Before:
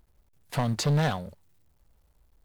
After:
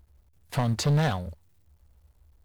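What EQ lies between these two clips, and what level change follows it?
parametric band 75 Hz +14.5 dB 0.53 octaves
0.0 dB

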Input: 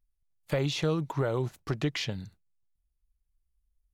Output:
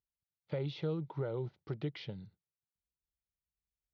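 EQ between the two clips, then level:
high-frequency loss of the air 280 metres
loudspeaker in its box 120–5,500 Hz, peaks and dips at 260 Hz −9 dB, 680 Hz −7 dB, 1,100 Hz −10 dB, 1,700 Hz −10 dB, 2,600 Hz −7 dB
−5.0 dB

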